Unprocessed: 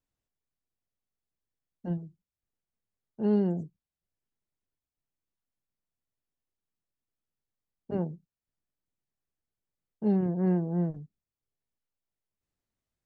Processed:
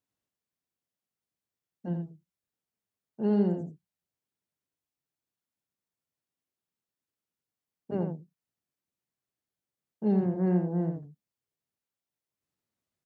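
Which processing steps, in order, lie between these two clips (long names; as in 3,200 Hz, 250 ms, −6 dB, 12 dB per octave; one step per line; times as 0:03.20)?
high-pass filter 110 Hz
on a send: single-tap delay 83 ms −6.5 dB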